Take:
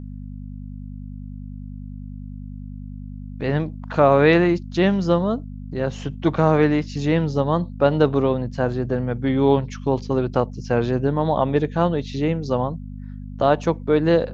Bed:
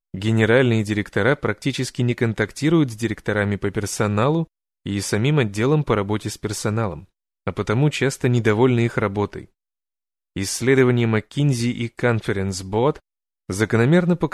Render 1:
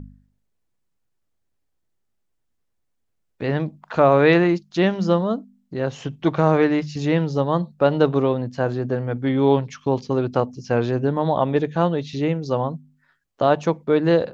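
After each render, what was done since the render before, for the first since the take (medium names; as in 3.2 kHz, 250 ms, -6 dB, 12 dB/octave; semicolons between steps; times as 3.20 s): de-hum 50 Hz, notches 5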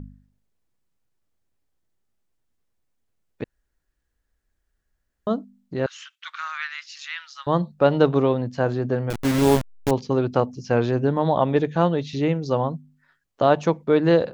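3.44–5.27 s: room tone; 5.86–7.47 s: elliptic high-pass 1.3 kHz, stop band 70 dB; 9.10–9.91 s: send-on-delta sampling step -19.5 dBFS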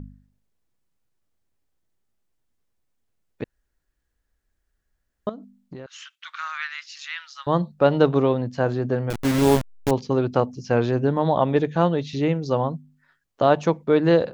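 5.29–6.34 s: compression 12:1, threshold -33 dBFS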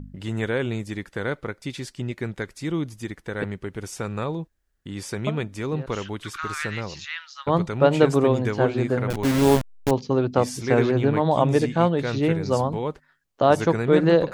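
add bed -9.5 dB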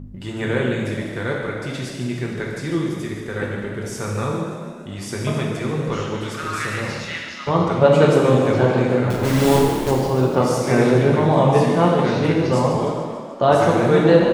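frequency-shifting echo 148 ms, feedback 64%, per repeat +34 Hz, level -11 dB; gated-style reverb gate 460 ms falling, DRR -2 dB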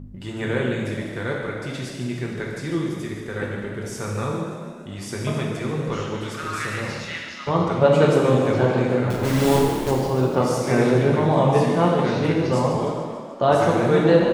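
trim -2.5 dB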